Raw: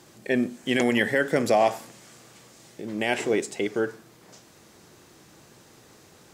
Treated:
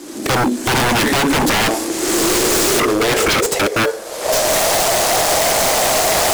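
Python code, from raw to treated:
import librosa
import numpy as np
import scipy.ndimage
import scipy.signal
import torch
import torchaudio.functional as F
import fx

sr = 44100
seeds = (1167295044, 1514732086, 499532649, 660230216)

p1 = fx.cvsd(x, sr, bps=64000)
p2 = fx.recorder_agc(p1, sr, target_db=-17.5, rise_db_per_s=40.0, max_gain_db=30)
p3 = fx.high_shelf(p2, sr, hz=3700.0, db=8.5)
p4 = fx.cheby_harmonics(p3, sr, harmonics=(8,), levels_db=(-17,), full_scale_db=-7.5)
p5 = fx.filter_sweep_highpass(p4, sr, from_hz=290.0, to_hz=660.0, start_s=1.44, end_s=4.8, q=6.4)
p6 = fx.sample_hold(p5, sr, seeds[0], rate_hz=3800.0, jitter_pct=0)
p7 = p5 + F.gain(torch.from_numpy(p6), -9.5).numpy()
p8 = 10.0 ** (-18.5 / 20.0) * (np.abs((p7 / 10.0 ** (-18.5 / 20.0) + 3.0) % 4.0 - 2.0) - 1.0)
y = F.gain(torch.from_numpy(p8), 8.5).numpy()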